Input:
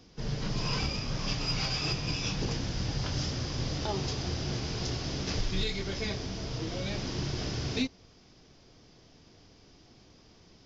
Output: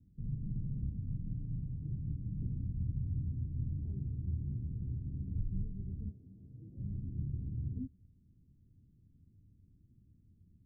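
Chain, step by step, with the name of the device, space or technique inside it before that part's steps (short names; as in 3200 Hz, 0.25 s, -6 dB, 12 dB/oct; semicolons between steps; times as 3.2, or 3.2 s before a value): 6.09–6.77 HPF 700 Hz -> 330 Hz 6 dB/oct; the neighbour's flat through the wall (LPF 230 Hz 24 dB/oct; bell 89 Hz +7.5 dB 0.74 oct); gain -6 dB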